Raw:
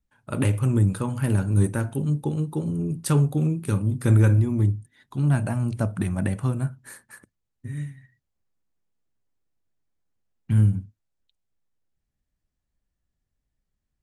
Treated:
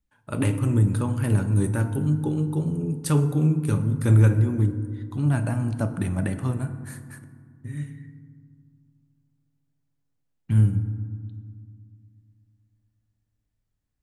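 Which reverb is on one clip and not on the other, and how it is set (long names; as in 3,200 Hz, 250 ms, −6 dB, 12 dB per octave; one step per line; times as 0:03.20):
feedback delay network reverb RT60 1.9 s, low-frequency decay 1.5×, high-frequency decay 0.4×, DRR 8.5 dB
level −1 dB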